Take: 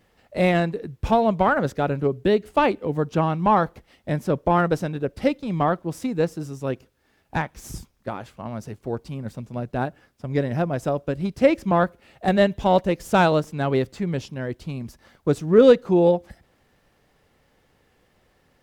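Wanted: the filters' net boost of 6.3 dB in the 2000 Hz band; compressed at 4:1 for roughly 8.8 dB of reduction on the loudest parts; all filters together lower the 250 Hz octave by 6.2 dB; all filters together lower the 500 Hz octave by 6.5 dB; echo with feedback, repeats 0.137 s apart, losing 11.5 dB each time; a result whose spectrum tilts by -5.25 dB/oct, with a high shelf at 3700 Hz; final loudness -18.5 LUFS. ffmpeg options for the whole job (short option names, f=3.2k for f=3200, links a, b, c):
-af "equalizer=f=250:t=o:g=-7.5,equalizer=f=500:t=o:g=-6.5,equalizer=f=2k:t=o:g=8,highshelf=f=3.7k:g=4,acompressor=threshold=-25dB:ratio=4,aecho=1:1:137|274|411:0.266|0.0718|0.0194,volume=12dB"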